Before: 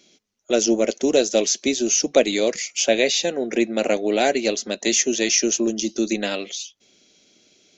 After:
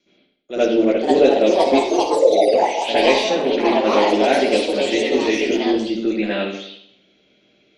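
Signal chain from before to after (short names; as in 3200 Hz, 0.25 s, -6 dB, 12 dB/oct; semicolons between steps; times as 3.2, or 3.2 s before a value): 1.76–2.48 formant sharpening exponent 3; gate with hold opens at -51 dBFS; LPF 3800 Hz 12 dB/oct; 5.15–5.63 sample gate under -44 dBFS; reverb, pre-delay 61 ms, DRR -12 dB; echoes that change speed 0.61 s, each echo +4 st, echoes 2; gain -9.5 dB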